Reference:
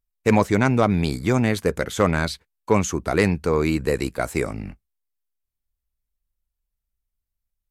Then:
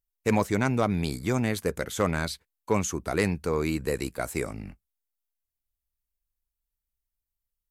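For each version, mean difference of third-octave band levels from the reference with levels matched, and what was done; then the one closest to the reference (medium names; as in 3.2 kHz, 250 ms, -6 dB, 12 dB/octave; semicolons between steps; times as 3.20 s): 1.5 dB: treble shelf 7.8 kHz +9 dB; trim -6.5 dB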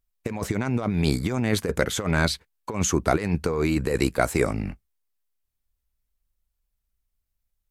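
5.0 dB: compressor with a negative ratio -22 dBFS, ratio -0.5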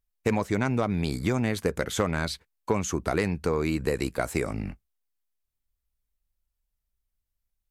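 2.5 dB: compression, threshold -22 dBFS, peak gain reduction 10 dB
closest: first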